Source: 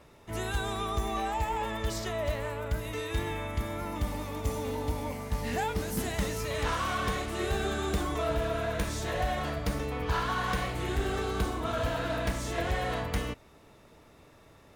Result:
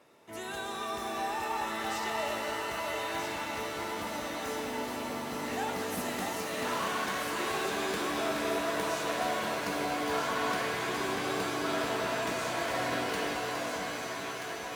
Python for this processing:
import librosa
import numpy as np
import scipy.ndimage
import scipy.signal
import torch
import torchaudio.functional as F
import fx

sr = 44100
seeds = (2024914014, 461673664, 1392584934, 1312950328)

p1 = scipy.signal.sosfilt(scipy.signal.butter(2, 240.0, 'highpass', fs=sr, output='sos'), x)
p2 = p1 + fx.echo_alternate(p1, sr, ms=640, hz=1200.0, feedback_pct=77, wet_db=-3.5, dry=0)
p3 = fx.rev_shimmer(p2, sr, seeds[0], rt60_s=3.9, semitones=7, shimmer_db=-2, drr_db=3.5)
y = p3 * librosa.db_to_amplitude(-4.0)